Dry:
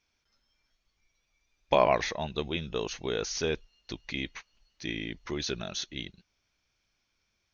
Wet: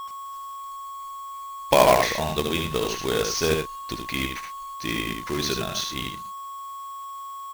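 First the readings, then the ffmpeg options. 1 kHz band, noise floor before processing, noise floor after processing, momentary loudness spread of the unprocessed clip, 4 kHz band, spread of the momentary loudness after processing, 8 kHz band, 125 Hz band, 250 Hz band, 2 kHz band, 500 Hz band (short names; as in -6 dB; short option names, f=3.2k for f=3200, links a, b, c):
+9.0 dB, -78 dBFS, -37 dBFS, 15 LU, +8.0 dB, 16 LU, n/a, +7.5 dB, +7.0 dB, +7.5 dB, +7.0 dB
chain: -af "aeval=exprs='val(0)+0.0158*sin(2*PI*1100*n/s)':c=same,aecho=1:1:63|76|108:0.188|0.562|0.211,acrusher=bits=2:mode=log:mix=0:aa=0.000001,volume=5.5dB"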